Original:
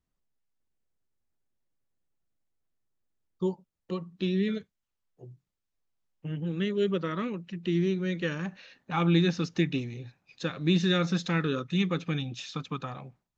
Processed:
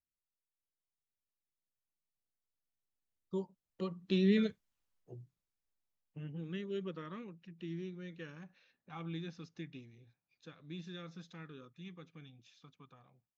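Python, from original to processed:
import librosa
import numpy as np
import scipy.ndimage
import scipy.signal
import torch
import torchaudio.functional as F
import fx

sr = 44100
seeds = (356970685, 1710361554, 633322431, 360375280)

y = fx.doppler_pass(x, sr, speed_mps=9, closest_m=4.0, pass_at_s=4.62)
y = y * librosa.db_to_amplitude(1.0)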